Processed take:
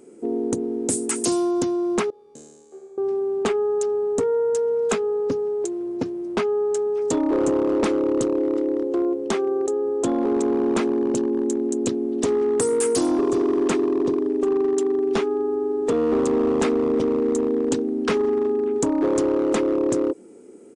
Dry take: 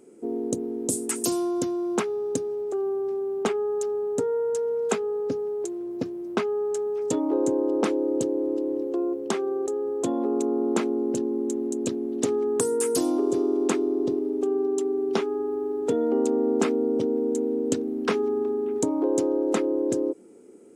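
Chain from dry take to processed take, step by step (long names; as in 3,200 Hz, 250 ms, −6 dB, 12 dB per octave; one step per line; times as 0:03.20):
0:02.10–0:02.98: tuned comb filter 76 Hz, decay 1.2 s, harmonics all, mix 100%
hard clipping −20.5 dBFS, distortion −15 dB
downsampling to 22,050 Hz
level +4.5 dB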